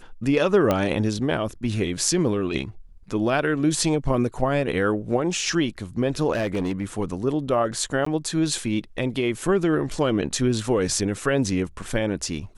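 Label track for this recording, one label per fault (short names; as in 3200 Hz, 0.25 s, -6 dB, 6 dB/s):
0.710000	0.710000	pop -8 dBFS
6.320000	6.840000	clipped -20.5 dBFS
8.050000	8.060000	gap 14 ms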